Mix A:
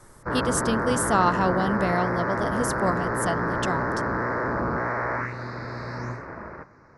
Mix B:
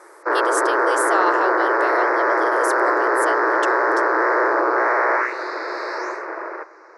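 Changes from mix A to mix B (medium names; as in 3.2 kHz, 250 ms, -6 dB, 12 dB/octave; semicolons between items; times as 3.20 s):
background +9.5 dB; master: add brick-wall FIR high-pass 310 Hz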